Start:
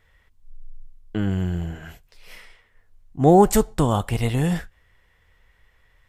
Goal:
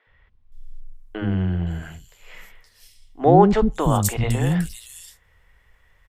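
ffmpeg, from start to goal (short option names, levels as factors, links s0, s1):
-filter_complex "[0:a]acrossover=split=310|3900[s0][s1][s2];[s0]adelay=70[s3];[s2]adelay=520[s4];[s3][s1][s4]amix=inputs=3:normalize=0,volume=1.26"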